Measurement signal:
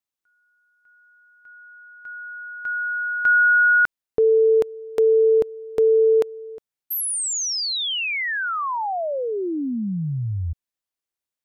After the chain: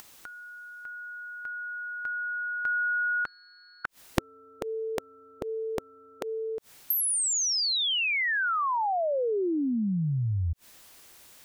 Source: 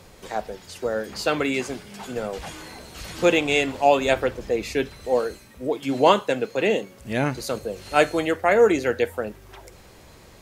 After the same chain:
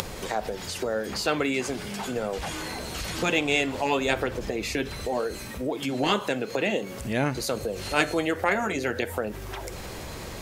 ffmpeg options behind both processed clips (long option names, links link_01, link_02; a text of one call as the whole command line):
ffmpeg -i in.wav -af "aeval=exprs='0.75*(cos(1*acos(clip(val(0)/0.75,-1,1)))-cos(1*PI/2))+0.0596*(cos(3*acos(clip(val(0)/0.75,-1,1)))-cos(3*PI/2))':channel_layout=same,acompressor=mode=upward:threshold=-29dB:ratio=2.5:attack=34:release=54:knee=2.83:detection=peak,afftfilt=real='re*lt(hypot(re,im),0.708)':imag='im*lt(hypot(re,im),0.708)':win_size=1024:overlap=0.75" out.wav